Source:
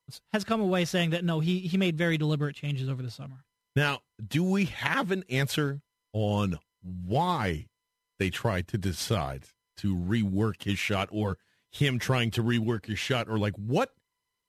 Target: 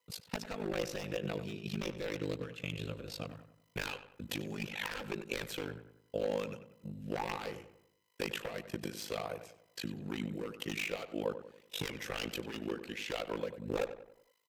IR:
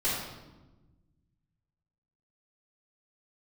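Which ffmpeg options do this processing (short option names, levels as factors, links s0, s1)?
-filter_complex "[0:a]highpass=220,highshelf=f=9600:g=7.5,aeval=exprs='0.0708*(abs(mod(val(0)/0.0708+3,4)-2)-1)':c=same,aecho=1:1:6:0.37,acompressor=threshold=0.00708:ratio=5,aeval=exprs='val(0)*sin(2*PI*26*n/s)':c=same,equalizer=f=500:t=o:w=0.33:g=9,equalizer=f=2500:t=o:w=0.33:g=5,equalizer=f=10000:t=o:w=0.33:g=-6,tremolo=f=50:d=0.788,asplit=2[s0][s1];[s1]adelay=94,lowpass=f=2400:p=1,volume=0.282,asplit=2[s2][s3];[s3]adelay=94,lowpass=f=2400:p=1,volume=0.45,asplit=2[s4][s5];[s5]adelay=94,lowpass=f=2400:p=1,volume=0.45,asplit=2[s6][s7];[s7]adelay=94,lowpass=f=2400:p=1,volume=0.45,asplit=2[s8][s9];[s9]adelay=94,lowpass=f=2400:p=1,volume=0.45[s10];[s2][s4][s6][s8][s10]amix=inputs=5:normalize=0[s11];[s0][s11]amix=inputs=2:normalize=0,volume=2.99"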